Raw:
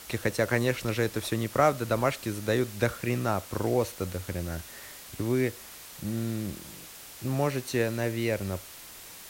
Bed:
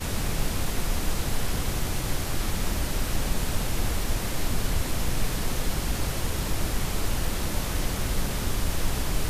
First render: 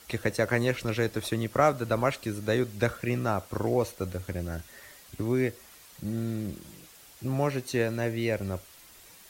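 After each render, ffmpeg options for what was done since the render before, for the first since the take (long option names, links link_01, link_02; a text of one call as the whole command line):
ffmpeg -i in.wav -af "afftdn=noise_reduction=8:noise_floor=-46" out.wav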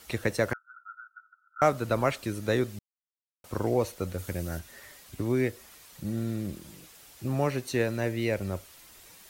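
ffmpeg -i in.wav -filter_complex "[0:a]asettb=1/sr,asplit=3[link_01][link_02][link_03];[link_01]atrim=end=0.534[link_04];[link_02]atrim=start=0.53:end=1.62,asetpts=PTS-STARTPTS,afade=type=in:duration=0.004:curve=qsin,afade=type=out:start_time=1.086:duration=0.004:curve=qsin,asuperpass=centerf=1400:order=12:qfactor=6.5[link_05];[link_03]atrim=start=1.616[link_06];[link_04][link_05]acrossfade=duration=0.004:curve1=hsin:curve2=qsin[link_07];[link_07][link_06]acrossfade=duration=0.004:curve1=qsin:curve2=hsin,asettb=1/sr,asplit=3[link_08][link_09][link_10];[link_08]atrim=end=4.184[link_11];[link_09]atrim=start=4.18:end=4.59,asetpts=PTS-STARTPTS,afade=type=in:duration=0.004:curve=qsin,afade=type=out:start_time=0.406:duration=0.004:curve=qsin,highshelf=frequency=5500:gain=8[link_12];[link_10]atrim=start=4.586[link_13];[link_11][link_12]acrossfade=duration=0.004:curve1=hsin:curve2=qsin[link_14];[link_14][link_13]acrossfade=duration=0.004:curve1=qsin:curve2=hsin,asplit=3[link_15][link_16][link_17];[link_15]atrim=end=2.79,asetpts=PTS-STARTPTS,afade=type=out:start_time=2.786:duration=0.004:curve=hsin[link_18];[link_16]atrim=start=2.79:end=3.44,asetpts=PTS-STARTPTS,volume=0[link_19];[link_17]atrim=start=3.44,asetpts=PTS-STARTPTS,afade=type=in:duration=0.004:curve=hsin[link_20];[link_18][link_19][link_20]concat=n=3:v=0:a=1" out.wav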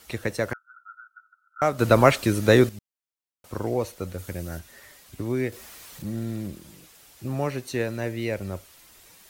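ffmpeg -i in.wav -filter_complex "[0:a]asettb=1/sr,asplit=3[link_01][link_02][link_03];[link_01]atrim=end=5.524[link_04];[link_02]atrim=start=5.52:end=6.48,asetpts=PTS-STARTPTS,afade=type=in:duration=0.004:curve=qsin,afade=type=out:start_time=0.956:duration=0.004:curve=qsin,aeval=exprs='val(0)+0.5*0.00668*sgn(val(0))':channel_layout=same[link_05];[link_03]atrim=start=6.476[link_06];[link_04][link_05]acrossfade=duration=0.004:curve1=hsin:curve2=qsin[link_07];[link_07][link_06]acrossfade=duration=0.004:curve1=qsin:curve2=hsin,asplit=3[link_08][link_09][link_10];[link_08]atrim=end=1.792[link_11];[link_09]atrim=start=1.788:end=2.692,asetpts=PTS-STARTPTS,volume=10dB[link_12];[link_10]atrim=start=2.688[link_13];[link_11][link_12]acrossfade=duration=0.004:curve1=hsin:curve2=hsin[link_14];[link_14][link_13]acrossfade=duration=0.004:curve1=hsin:curve2=hsin" out.wav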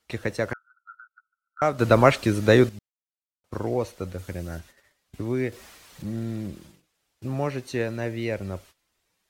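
ffmpeg -i in.wav -af "agate=range=-19dB:threshold=-46dB:ratio=16:detection=peak,highshelf=frequency=9500:gain=-12" out.wav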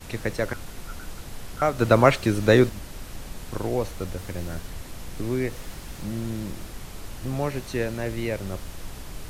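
ffmpeg -i in.wav -i bed.wav -filter_complex "[1:a]volume=-11dB[link_01];[0:a][link_01]amix=inputs=2:normalize=0" out.wav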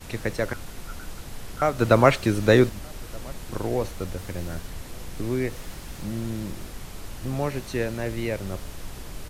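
ffmpeg -i in.wav -filter_complex "[0:a]asplit=2[link_01][link_02];[link_02]adelay=1224,volume=-25dB,highshelf=frequency=4000:gain=-27.6[link_03];[link_01][link_03]amix=inputs=2:normalize=0" out.wav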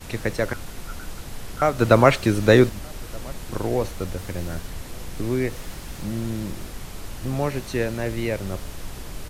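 ffmpeg -i in.wav -af "volume=2.5dB,alimiter=limit=-1dB:level=0:latency=1" out.wav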